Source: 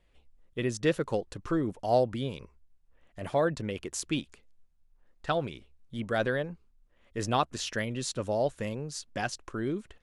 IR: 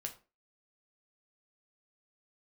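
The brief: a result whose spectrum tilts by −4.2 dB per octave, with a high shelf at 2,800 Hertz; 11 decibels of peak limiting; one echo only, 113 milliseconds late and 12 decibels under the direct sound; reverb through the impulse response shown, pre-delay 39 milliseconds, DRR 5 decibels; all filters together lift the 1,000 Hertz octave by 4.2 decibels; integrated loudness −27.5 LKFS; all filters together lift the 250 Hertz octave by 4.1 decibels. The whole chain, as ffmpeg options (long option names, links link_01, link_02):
-filter_complex "[0:a]equalizer=frequency=250:width_type=o:gain=5,equalizer=frequency=1000:width_type=o:gain=4.5,highshelf=frequency=2800:gain=8.5,alimiter=limit=-18dB:level=0:latency=1,aecho=1:1:113:0.251,asplit=2[link_01][link_02];[1:a]atrim=start_sample=2205,adelay=39[link_03];[link_02][link_03]afir=irnorm=-1:irlink=0,volume=-3dB[link_04];[link_01][link_04]amix=inputs=2:normalize=0,volume=2dB"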